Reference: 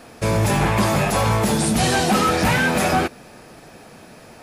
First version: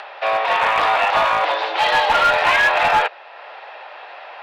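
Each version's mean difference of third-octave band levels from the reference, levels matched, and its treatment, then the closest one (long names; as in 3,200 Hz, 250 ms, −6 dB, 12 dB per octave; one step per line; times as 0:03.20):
13.0 dB: single-sideband voice off tune +110 Hz 490–3,600 Hz
upward compression, threshold −36 dBFS
asymmetric clip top −18 dBFS
level +6 dB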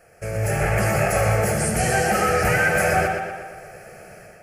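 5.5 dB: automatic gain control gain up to 10.5 dB
phaser with its sweep stopped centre 1,000 Hz, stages 6
tape delay 121 ms, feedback 62%, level −3.5 dB, low-pass 5,300 Hz
level −7.5 dB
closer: second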